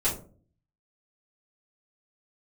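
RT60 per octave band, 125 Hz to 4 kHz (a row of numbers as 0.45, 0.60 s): 0.75, 0.65, 0.50, 0.35, 0.25, 0.20 s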